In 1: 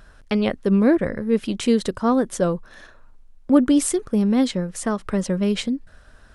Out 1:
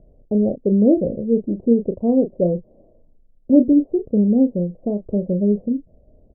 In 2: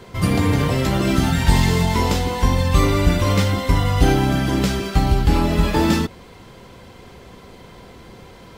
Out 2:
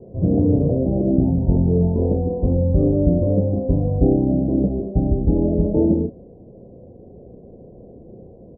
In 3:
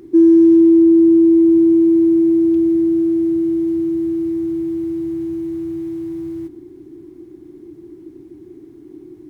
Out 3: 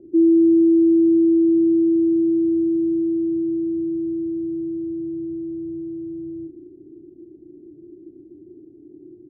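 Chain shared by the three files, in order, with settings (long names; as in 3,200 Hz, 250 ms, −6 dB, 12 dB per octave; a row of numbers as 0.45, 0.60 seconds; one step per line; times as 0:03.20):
Butterworth low-pass 640 Hz 48 dB per octave
low-shelf EQ 91 Hz −7 dB
double-tracking delay 34 ms −9 dB
loudness normalisation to −19 LKFS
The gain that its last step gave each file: +2.5, +2.0, −5.0 decibels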